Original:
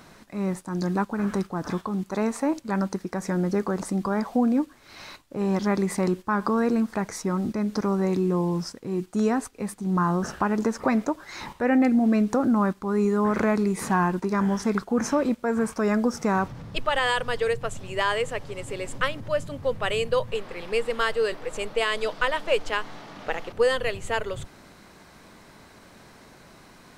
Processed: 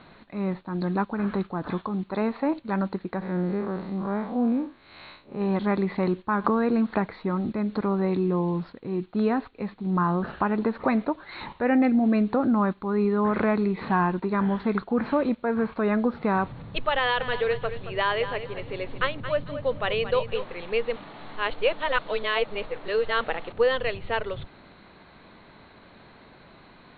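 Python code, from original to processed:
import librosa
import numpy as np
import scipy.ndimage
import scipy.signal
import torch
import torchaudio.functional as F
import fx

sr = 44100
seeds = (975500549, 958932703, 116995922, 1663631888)

y = fx.spec_blur(x, sr, span_ms=112.0, at=(3.21, 5.39), fade=0.02)
y = fx.band_squash(y, sr, depth_pct=100, at=(6.44, 7.06))
y = fx.echo_feedback(y, sr, ms=224, feedback_pct=23, wet_db=-11.0, at=(17.19, 20.43), fade=0.02)
y = fx.edit(y, sr, fx.reverse_span(start_s=20.96, length_s=2.28), tone=tone)
y = scipy.signal.sosfilt(scipy.signal.cheby1(8, 1.0, 4300.0, 'lowpass', fs=sr, output='sos'), y)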